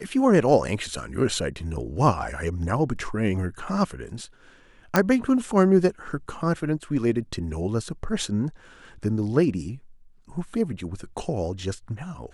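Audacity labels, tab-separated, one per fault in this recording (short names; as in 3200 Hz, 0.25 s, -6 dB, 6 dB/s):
4.960000	4.960000	pop -5 dBFS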